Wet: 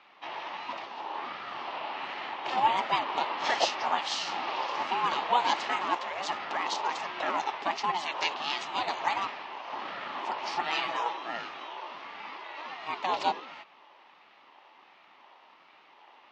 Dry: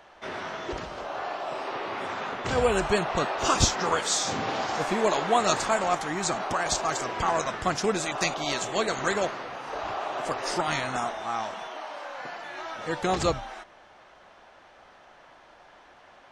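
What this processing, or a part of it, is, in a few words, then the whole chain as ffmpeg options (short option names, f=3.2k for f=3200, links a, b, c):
voice changer toy: -filter_complex "[0:a]aeval=exprs='val(0)*sin(2*PI*430*n/s+430*0.45/1.4*sin(2*PI*1.4*n/s))':c=same,highpass=460,equalizer=f=470:t=q:w=4:g=-7,equalizer=f=860:t=q:w=4:g=7,equalizer=f=1.5k:t=q:w=4:g=-8,equalizer=f=2.8k:t=q:w=4:g=5,lowpass=f=4.8k:w=0.5412,lowpass=f=4.8k:w=1.3066,asettb=1/sr,asplit=3[a][b][c];[a]atrim=end=10.724[d];[b]atrim=start=10.72:end=11.17,asetpts=PTS-STARTPTS,afade=t=in:d=0.004:c=qsin,afade=t=out:st=0.446:d=0.004:c=qsin,aecho=1:1:6.1:0.8,atrim=end_sample=19845[e];[c]atrim=start=11.166[f];[d][e]acrossfade=d=0.004:c1=hsin:c2=qsin[g];[g][f]acrossfade=d=0.004:c1=qsin:c2=hsin"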